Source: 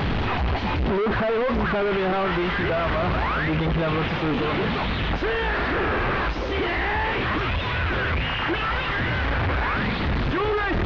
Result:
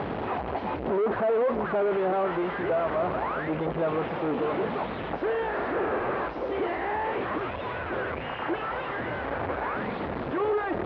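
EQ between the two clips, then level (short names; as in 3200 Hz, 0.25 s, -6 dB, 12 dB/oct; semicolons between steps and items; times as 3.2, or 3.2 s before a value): band-pass 560 Hz, Q 1; 0.0 dB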